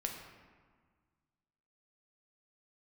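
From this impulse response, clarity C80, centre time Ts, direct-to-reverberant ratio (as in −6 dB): 6.0 dB, 45 ms, 1.0 dB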